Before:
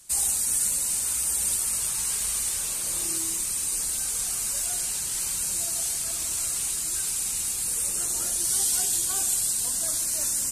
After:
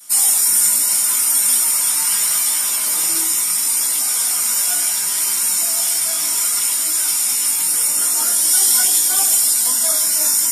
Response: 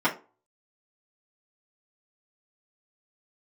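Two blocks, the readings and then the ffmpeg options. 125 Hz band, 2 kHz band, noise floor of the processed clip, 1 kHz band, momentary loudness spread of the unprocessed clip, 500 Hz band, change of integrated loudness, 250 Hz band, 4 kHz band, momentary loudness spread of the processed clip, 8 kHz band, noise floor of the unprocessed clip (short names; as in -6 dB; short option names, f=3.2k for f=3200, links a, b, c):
n/a, +12.0 dB, -19 dBFS, +12.5 dB, 4 LU, +8.0 dB, +10.5 dB, +6.0 dB, +11.5 dB, 4 LU, +9.5 dB, -30 dBFS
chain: -filter_complex "[0:a]aemphasis=mode=production:type=riaa,flanger=delay=15.5:depth=4.4:speed=0.73[a];[1:a]atrim=start_sample=2205[b];[a][b]afir=irnorm=-1:irlink=0,volume=-1dB"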